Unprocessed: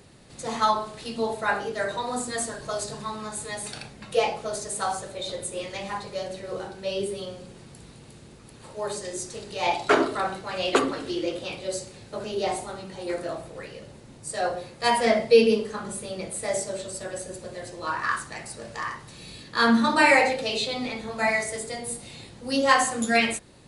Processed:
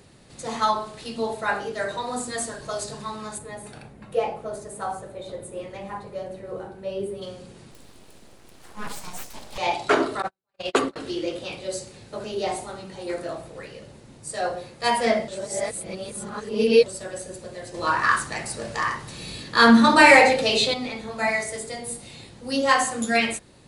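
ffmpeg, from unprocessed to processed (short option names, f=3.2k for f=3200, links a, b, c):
-filter_complex "[0:a]asplit=3[a][b][c];[a]afade=t=out:st=3.37:d=0.02[d];[b]equalizer=f=5.2k:t=o:w=2.4:g=-14.5,afade=t=in:st=3.37:d=0.02,afade=t=out:st=7.21:d=0.02[e];[c]afade=t=in:st=7.21:d=0.02[f];[d][e][f]amix=inputs=3:normalize=0,asettb=1/sr,asplit=3[g][h][i];[g]atrim=end=7.714[j];[h]atrim=start=7.71:end=9.58,asetpts=PTS-STARTPTS,afade=t=in:d=0.004:c=qsin,afade=t=out:st=1.866:d=0.004:c=qsin,aeval=exprs='abs(val(0))':c=same[k];[i]atrim=start=9.576[l];[j][k]acrossfade=d=0.004:c1=hsin:c2=qsin[m];[m][l]acrossfade=d=0.004:c1=qsin:c2=hsin,asettb=1/sr,asplit=3[n][o][p];[n]atrim=end=10.224[q];[o]atrim=start=10.22:end=10.96,asetpts=PTS-STARTPTS,afade=t=in:d=0.004:c=qsin,afade=t=out:st=0.736:d=0.004:c=qsin,agate=range=-53dB:threshold=-27dB:ratio=16:release=100:detection=peak[r];[p]atrim=start=10.956[s];[q][r]acrossfade=d=0.004:c1=hsin:c2=qsin[t];[t][s]acrossfade=d=0.004:c1=qsin:c2=hsin,asettb=1/sr,asplit=3[u][v][w];[u]atrim=end=17.744[x];[v]atrim=start=17.74:end=20.74,asetpts=PTS-STARTPTS,afade=t=in:d=0.004:c=qsin,afade=t=out:st=2.996:d=0.004:c=qsin,acontrast=66[y];[w]atrim=start=20.736[z];[x][y]acrossfade=d=0.004:c1=hsin:c2=qsin[aa];[aa][z]acrossfade=d=0.004:c1=qsin:c2=hsin,asplit=3[ab][ac][ad];[ab]atrim=end=15.282[ae];[ac]atrim=start=15.278:end=16.862,asetpts=PTS-STARTPTS,areverse[af];[ad]atrim=start=16.858[ag];[ae][af]acrossfade=d=0.004:c1=hsin:c2=hsin[ah];[ah][ag]acrossfade=d=0.004:c1=hsin:c2=hsin"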